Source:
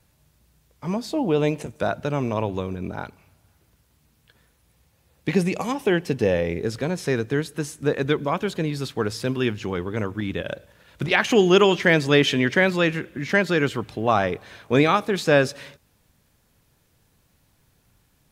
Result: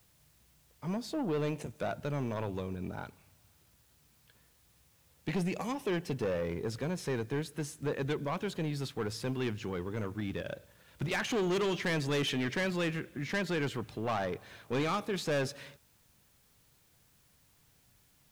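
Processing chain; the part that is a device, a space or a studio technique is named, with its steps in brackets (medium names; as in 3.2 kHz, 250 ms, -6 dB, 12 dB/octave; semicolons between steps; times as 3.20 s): open-reel tape (saturation -19.5 dBFS, distortion -8 dB; peaking EQ 130 Hz +2.5 dB 0.88 oct; white noise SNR 33 dB); trim -8 dB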